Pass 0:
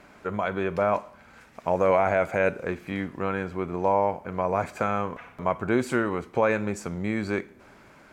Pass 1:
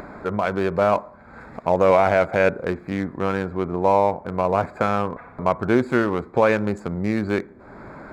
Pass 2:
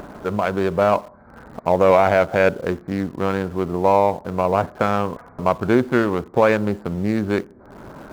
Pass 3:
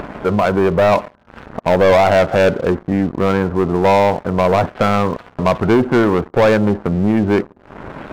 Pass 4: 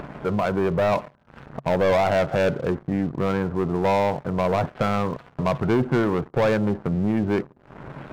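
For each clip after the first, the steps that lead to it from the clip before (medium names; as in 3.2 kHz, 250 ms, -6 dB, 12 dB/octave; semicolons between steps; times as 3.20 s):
local Wiener filter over 15 samples; upward compressor, threshold -34 dBFS; trim +5.5 dB
local Wiener filter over 15 samples; in parallel at -11.5 dB: word length cut 6-bit, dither none
spectral gate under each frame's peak -30 dB strong; waveshaping leveller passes 3; trim -2.5 dB
peaking EQ 140 Hz +11 dB 0.35 oct; trim -8.5 dB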